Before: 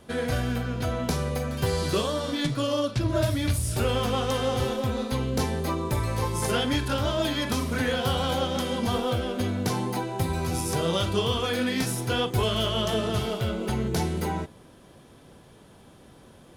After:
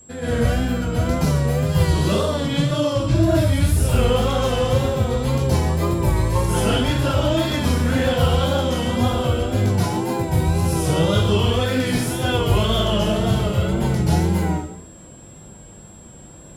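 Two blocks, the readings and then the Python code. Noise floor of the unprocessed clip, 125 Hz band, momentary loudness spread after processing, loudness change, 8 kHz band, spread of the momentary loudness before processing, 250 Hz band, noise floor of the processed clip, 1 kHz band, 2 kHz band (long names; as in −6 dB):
−52 dBFS, +10.0 dB, 3 LU, +7.0 dB, +4.5 dB, 4 LU, +7.0 dB, −42 dBFS, +5.0 dB, +4.5 dB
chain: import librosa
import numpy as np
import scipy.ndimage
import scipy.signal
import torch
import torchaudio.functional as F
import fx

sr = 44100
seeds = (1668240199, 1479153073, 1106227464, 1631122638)

y = fx.rev_plate(x, sr, seeds[0], rt60_s=0.64, hf_ratio=0.95, predelay_ms=115, drr_db=-10.0)
y = fx.vibrato(y, sr, rate_hz=1.9, depth_cents=68.0)
y = y + 10.0 ** (-39.0 / 20.0) * np.sin(2.0 * np.pi * 7600.0 * np.arange(len(y)) / sr)
y = fx.low_shelf(y, sr, hz=350.0, db=8.0)
y = y * 10.0 ** (-6.5 / 20.0)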